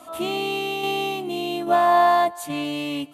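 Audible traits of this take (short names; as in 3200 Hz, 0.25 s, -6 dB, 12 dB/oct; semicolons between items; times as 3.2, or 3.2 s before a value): tremolo saw down 1.2 Hz, depth 40%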